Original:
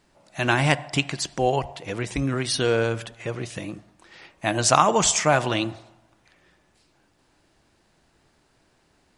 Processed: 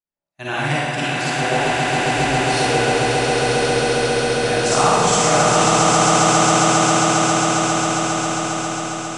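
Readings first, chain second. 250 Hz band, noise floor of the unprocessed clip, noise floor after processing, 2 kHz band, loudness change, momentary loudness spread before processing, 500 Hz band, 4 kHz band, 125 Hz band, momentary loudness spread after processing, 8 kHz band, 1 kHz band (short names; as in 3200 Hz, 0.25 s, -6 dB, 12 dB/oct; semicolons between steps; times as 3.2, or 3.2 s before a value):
+8.5 dB, -65 dBFS, -30 dBFS, +9.0 dB, +6.5 dB, 15 LU, +8.0 dB, +8.5 dB, +6.0 dB, 8 LU, +9.0 dB, +10.0 dB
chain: swelling echo 0.135 s, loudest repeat 8, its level -4.5 dB; expander -24 dBFS; Schroeder reverb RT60 1.5 s, DRR -8 dB; gain -7.5 dB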